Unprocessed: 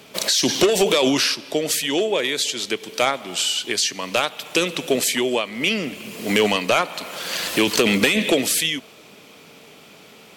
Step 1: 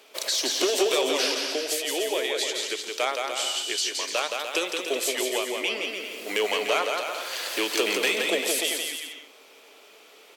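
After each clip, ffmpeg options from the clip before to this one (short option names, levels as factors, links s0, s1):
-filter_complex "[0:a]highpass=f=350:w=0.5412,highpass=f=350:w=1.3066,asplit=2[s0][s1];[s1]aecho=0:1:170|297.5|393.1|464.8|518.6:0.631|0.398|0.251|0.158|0.1[s2];[s0][s2]amix=inputs=2:normalize=0,volume=0.447"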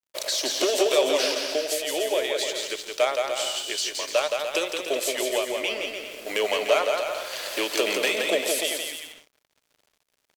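-af "equalizer=f=600:t=o:w=0.26:g=10,aeval=exprs='sgn(val(0))*max(abs(val(0))-0.00631,0)':c=same"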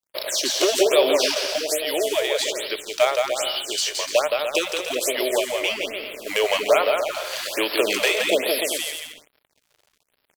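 -filter_complex "[0:a]asplit=2[s0][s1];[s1]acrusher=bits=3:mode=log:mix=0:aa=0.000001,volume=0.562[s2];[s0][s2]amix=inputs=2:normalize=0,afftfilt=real='re*(1-between(b*sr/1024,210*pow(7900/210,0.5+0.5*sin(2*PI*1.2*pts/sr))/1.41,210*pow(7900/210,0.5+0.5*sin(2*PI*1.2*pts/sr))*1.41))':imag='im*(1-between(b*sr/1024,210*pow(7900/210,0.5+0.5*sin(2*PI*1.2*pts/sr))/1.41,210*pow(7900/210,0.5+0.5*sin(2*PI*1.2*pts/sr))*1.41))':win_size=1024:overlap=0.75"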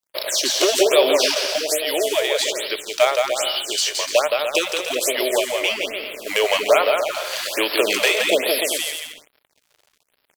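-af "lowshelf=f=320:g=-4,volume=1.41"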